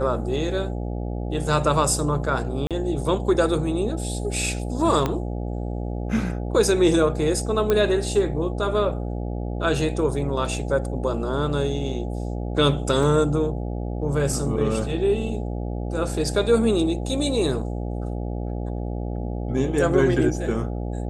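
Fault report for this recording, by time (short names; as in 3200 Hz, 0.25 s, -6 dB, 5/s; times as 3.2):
buzz 60 Hz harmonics 14 -28 dBFS
2.67–2.71 gap 37 ms
5.06 pop -10 dBFS
7.7 pop -9 dBFS
13.03 gap 2.7 ms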